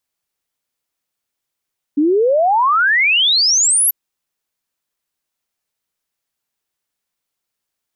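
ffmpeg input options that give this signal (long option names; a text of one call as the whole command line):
ffmpeg -f lavfi -i "aevalsrc='0.299*clip(min(t,1.94-t)/0.01,0,1)*sin(2*PI*280*1.94/log(12000/280)*(exp(log(12000/280)*t/1.94)-1))':duration=1.94:sample_rate=44100" out.wav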